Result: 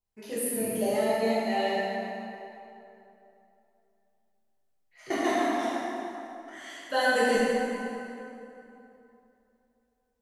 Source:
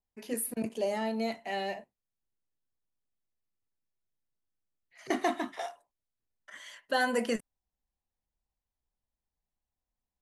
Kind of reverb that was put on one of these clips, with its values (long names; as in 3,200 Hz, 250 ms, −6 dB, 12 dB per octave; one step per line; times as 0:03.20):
dense smooth reverb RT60 3 s, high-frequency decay 0.65×, DRR −9 dB
level −3.5 dB